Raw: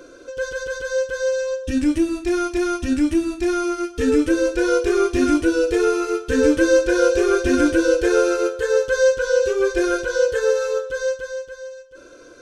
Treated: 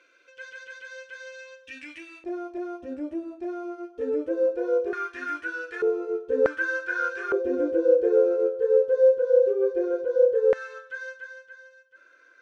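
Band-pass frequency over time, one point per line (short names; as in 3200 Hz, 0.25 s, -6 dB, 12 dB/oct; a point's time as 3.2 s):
band-pass, Q 3.8
2300 Hz
from 2.24 s 570 Hz
from 4.93 s 1600 Hz
from 5.82 s 510 Hz
from 6.46 s 1500 Hz
from 7.32 s 480 Hz
from 10.53 s 1800 Hz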